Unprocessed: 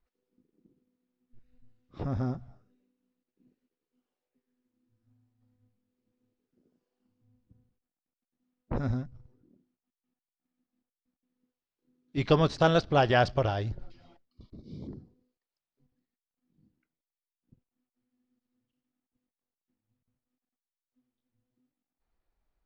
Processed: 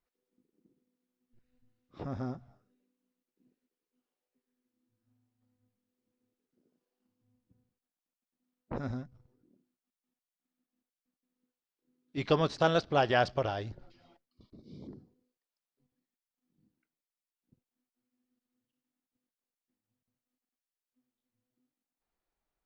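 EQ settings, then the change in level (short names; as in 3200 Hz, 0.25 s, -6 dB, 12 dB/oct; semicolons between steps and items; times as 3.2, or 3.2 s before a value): low shelf 110 Hz -12 dB; -2.5 dB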